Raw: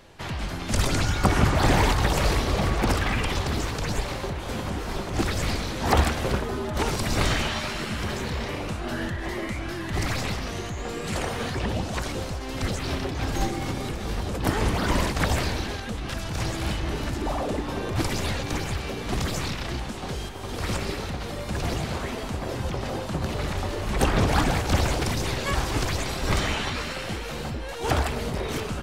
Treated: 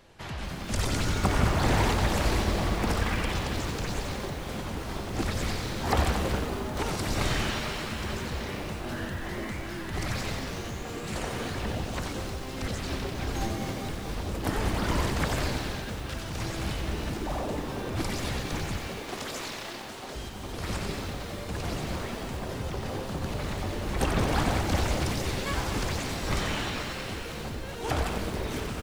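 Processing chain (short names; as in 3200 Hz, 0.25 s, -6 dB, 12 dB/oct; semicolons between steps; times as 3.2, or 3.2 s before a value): 18.79–20.15 HPF 330 Hz 12 dB/oct; frequency-shifting echo 91 ms, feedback 61%, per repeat -130 Hz, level -6.5 dB; lo-fi delay 0.225 s, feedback 55%, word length 6-bit, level -10 dB; gain -5.5 dB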